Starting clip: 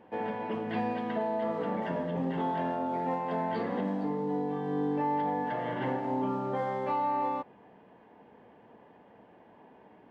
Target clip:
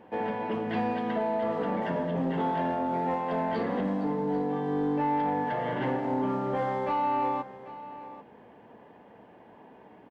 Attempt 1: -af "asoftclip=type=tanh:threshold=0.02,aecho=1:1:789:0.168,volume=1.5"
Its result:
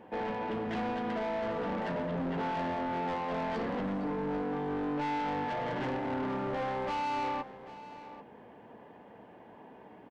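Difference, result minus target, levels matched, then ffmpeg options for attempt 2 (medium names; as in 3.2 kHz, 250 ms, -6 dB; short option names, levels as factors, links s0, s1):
saturation: distortion +13 dB
-af "asoftclip=type=tanh:threshold=0.075,aecho=1:1:789:0.168,volume=1.5"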